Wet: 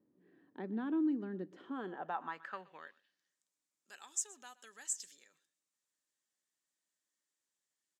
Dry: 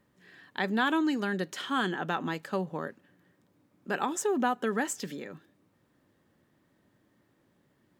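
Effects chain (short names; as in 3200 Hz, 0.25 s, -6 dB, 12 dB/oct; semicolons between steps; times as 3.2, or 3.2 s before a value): echo 0.123 s -20.5 dB; band-pass sweep 310 Hz -> 7300 Hz, 1.62–3.37; dynamic EQ 470 Hz, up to -6 dB, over -44 dBFS, Q 0.73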